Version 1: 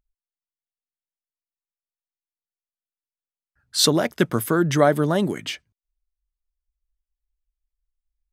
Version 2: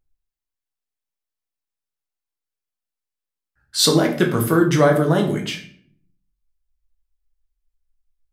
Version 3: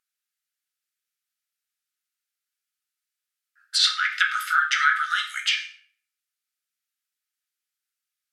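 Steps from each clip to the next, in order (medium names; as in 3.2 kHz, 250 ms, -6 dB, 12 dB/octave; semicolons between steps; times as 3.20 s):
reverberation RT60 0.55 s, pre-delay 6 ms, DRR 1 dB
brick-wall FIR high-pass 1.2 kHz; low-pass that closes with the level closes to 2.7 kHz, closed at -22.5 dBFS; trim +7 dB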